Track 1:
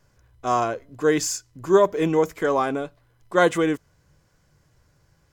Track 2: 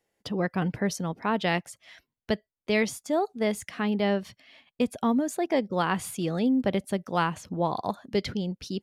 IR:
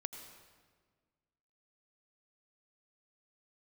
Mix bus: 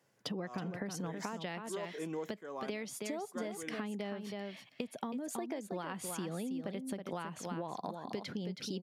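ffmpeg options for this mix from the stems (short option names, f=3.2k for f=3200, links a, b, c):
-filter_complex "[0:a]volume=-10.5dB[a];[1:a]acompressor=threshold=-30dB:ratio=5,volume=0dB,asplit=3[b][c][d];[c]volume=-8dB[e];[d]apad=whole_len=234720[f];[a][f]sidechaincompress=threshold=-44dB:ratio=8:attack=48:release=784[g];[e]aecho=0:1:322:1[h];[g][b][h]amix=inputs=3:normalize=0,highpass=f=140:w=0.5412,highpass=f=140:w=1.3066,acompressor=threshold=-36dB:ratio=6"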